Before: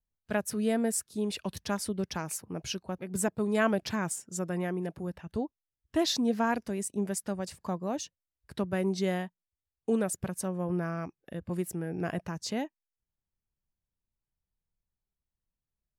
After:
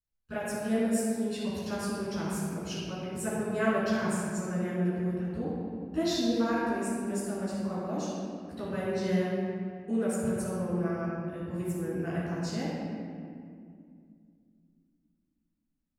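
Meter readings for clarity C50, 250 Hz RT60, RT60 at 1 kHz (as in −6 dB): −3.0 dB, 3.4 s, 2.1 s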